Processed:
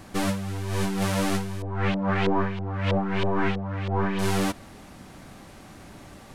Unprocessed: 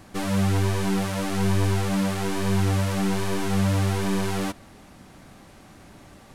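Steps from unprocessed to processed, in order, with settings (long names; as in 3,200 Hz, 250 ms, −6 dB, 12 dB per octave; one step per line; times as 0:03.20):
compressor whose output falls as the input rises −25 dBFS, ratio −0.5
0:01.62–0:04.19: auto-filter low-pass saw up 3.1 Hz 530–3,500 Hz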